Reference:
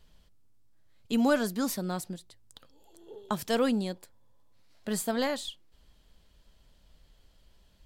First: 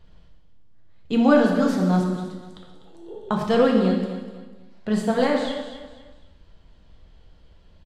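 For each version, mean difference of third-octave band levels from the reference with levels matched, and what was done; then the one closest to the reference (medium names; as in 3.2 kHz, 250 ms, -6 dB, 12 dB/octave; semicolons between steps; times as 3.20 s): 8.0 dB: tape spacing loss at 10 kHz 21 dB; on a send: feedback delay 248 ms, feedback 35%, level -13 dB; on the sum: gated-style reverb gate 360 ms falling, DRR 0 dB; trim +7.5 dB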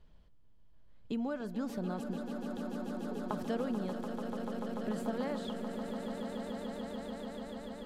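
11.5 dB: low-pass 1.2 kHz 6 dB/octave; compression 5:1, threshold -34 dBFS, peak gain reduction 12.5 dB; on a send: echo with a slow build-up 146 ms, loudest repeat 8, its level -9.5 dB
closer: first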